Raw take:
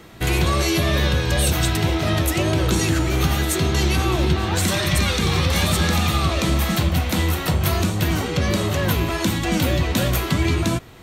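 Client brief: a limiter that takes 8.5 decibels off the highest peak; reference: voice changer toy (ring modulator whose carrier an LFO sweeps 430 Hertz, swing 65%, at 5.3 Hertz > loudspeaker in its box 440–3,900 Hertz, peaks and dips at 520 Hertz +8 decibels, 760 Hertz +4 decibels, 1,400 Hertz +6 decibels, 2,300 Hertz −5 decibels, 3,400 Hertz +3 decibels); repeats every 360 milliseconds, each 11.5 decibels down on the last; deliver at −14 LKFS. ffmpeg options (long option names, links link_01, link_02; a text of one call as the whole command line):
ffmpeg -i in.wav -af "alimiter=limit=-15.5dB:level=0:latency=1,aecho=1:1:360|720|1080:0.266|0.0718|0.0194,aeval=exprs='val(0)*sin(2*PI*430*n/s+430*0.65/5.3*sin(2*PI*5.3*n/s))':channel_layout=same,highpass=440,equalizer=frequency=520:width_type=q:width=4:gain=8,equalizer=frequency=760:width_type=q:width=4:gain=4,equalizer=frequency=1400:width_type=q:width=4:gain=6,equalizer=frequency=2300:width_type=q:width=4:gain=-5,equalizer=frequency=3400:width_type=q:width=4:gain=3,lowpass=frequency=3900:width=0.5412,lowpass=frequency=3900:width=1.3066,volume=11.5dB" out.wav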